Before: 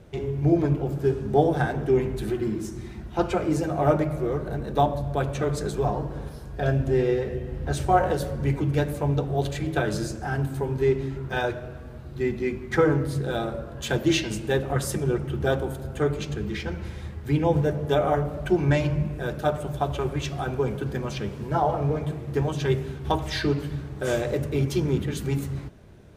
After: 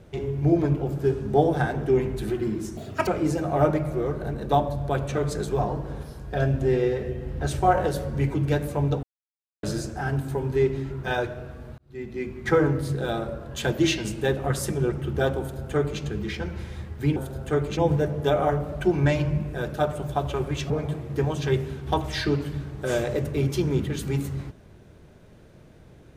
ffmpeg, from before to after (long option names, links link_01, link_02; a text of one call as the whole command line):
ffmpeg -i in.wav -filter_complex "[0:a]asplit=9[link_01][link_02][link_03][link_04][link_05][link_06][link_07][link_08][link_09];[link_01]atrim=end=2.774[link_10];[link_02]atrim=start=2.77:end=3.33,asetpts=PTS-STARTPTS,asetrate=82026,aresample=44100,atrim=end_sample=13277,asetpts=PTS-STARTPTS[link_11];[link_03]atrim=start=3.326:end=9.29,asetpts=PTS-STARTPTS,afade=type=out:start_time=5.96:duration=0.004:curve=hsin[link_12];[link_04]atrim=start=9.29:end=9.89,asetpts=PTS-STARTPTS,volume=0[link_13];[link_05]atrim=start=9.89:end=12.04,asetpts=PTS-STARTPTS,afade=type=in:duration=0.004:curve=hsin,afade=type=out:start_time=2.146:duration=0.004:curve=hsin[link_14];[link_06]atrim=start=12.04:end=17.422,asetpts=PTS-STARTPTS,afade=type=in:duration=0.69[link_15];[link_07]atrim=start=15.648:end=16.262[link_16];[link_08]atrim=start=17.418:end=20.352[link_17];[link_09]atrim=start=21.878[link_18];[link_10][link_11]acrossfade=duration=0.004:curve1=hsin:curve2=hsin[link_19];[link_12][link_13][link_14][link_15]concat=n=4:v=0:a=1[link_20];[link_19][link_20]acrossfade=duration=0.004:curve1=hsin:curve2=hsin[link_21];[link_21][link_16]acrossfade=duration=0.004:curve1=hsin:curve2=hsin[link_22];[link_22][link_17]acrossfade=duration=0.004:curve1=hsin:curve2=hsin[link_23];[link_23][link_18]acrossfade=duration=0.004:curve1=hsin:curve2=hsin" out.wav